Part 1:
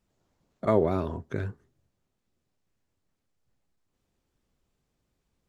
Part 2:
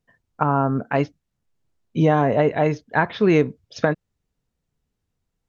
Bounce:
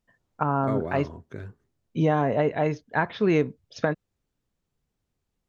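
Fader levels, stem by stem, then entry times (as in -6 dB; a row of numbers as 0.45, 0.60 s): -6.5, -5.0 dB; 0.00, 0.00 s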